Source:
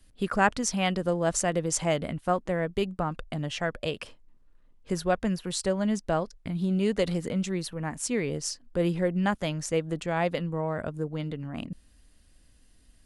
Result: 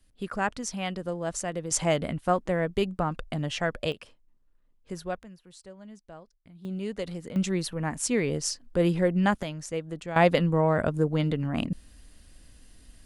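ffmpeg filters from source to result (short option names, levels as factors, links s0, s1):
-af "asetnsamples=n=441:p=0,asendcmd='1.71 volume volume 1.5dB;3.92 volume volume -7.5dB;5.23 volume volume -19.5dB;6.65 volume volume -7.5dB;7.36 volume volume 2.5dB;9.43 volume volume -5dB;10.16 volume volume 7dB',volume=0.531"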